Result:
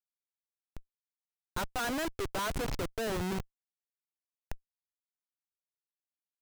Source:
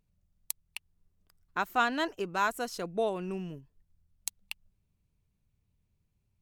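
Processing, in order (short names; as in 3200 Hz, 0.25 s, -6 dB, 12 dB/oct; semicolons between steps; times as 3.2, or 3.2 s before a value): low-pass opened by the level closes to 670 Hz, open at -28 dBFS; HPF 240 Hz 12 dB/oct; Schmitt trigger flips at -37.5 dBFS; gain +4.5 dB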